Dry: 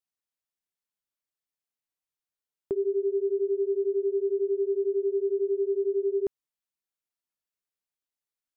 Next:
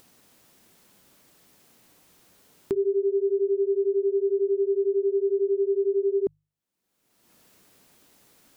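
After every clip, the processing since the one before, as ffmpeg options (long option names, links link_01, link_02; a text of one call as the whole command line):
ffmpeg -i in.wav -af "equalizer=frequency=220:width=0.39:gain=12,bandreject=frequency=50:width_type=h:width=6,bandreject=frequency=100:width_type=h:width=6,bandreject=frequency=150:width_type=h:width=6,acompressor=mode=upward:threshold=-23dB:ratio=2.5,volume=-6.5dB" out.wav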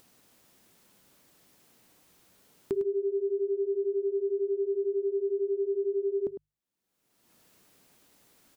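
ffmpeg -i in.wav -af "aecho=1:1:104:0.266,volume=-4dB" out.wav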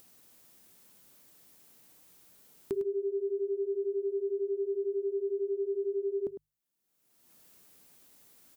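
ffmpeg -i in.wav -af "crystalizer=i=1:c=0,volume=-3dB" out.wav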